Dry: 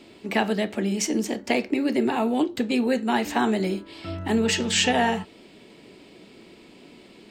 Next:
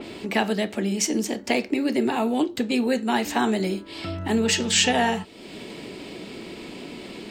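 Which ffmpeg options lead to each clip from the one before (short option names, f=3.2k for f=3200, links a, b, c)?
-af "acompressor=mode=upward:threshold=-26dB:ratio=2.5,adynamicequalizer=threshold=0.0158:dfrequency=3300:dqfactor=0.7:tfrequency=3300:tqfactor=0.7:attack=5:release=100:ratio=0.375:range=2:mode=boostabove:tftype=highshelf"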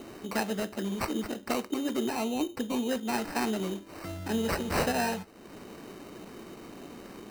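-af "acrusher=samples=13:mix=1:aa=0.000001,volume=-7.5dB"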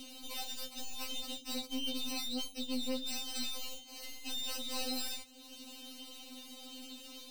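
-af "aeval=exprs='(tanh(63.1*val(0)+0.55)-tanh(0.55))/63.1':c=same,highshelf=f=2.4k:t=q:w=3:g=11,afftfilt=real='re*3.46*eq(mod(b,12),0)':imag='im*3.46*eq(mod(b,12),0)':win_size=2048:overlap=0.75,volume=-3dB"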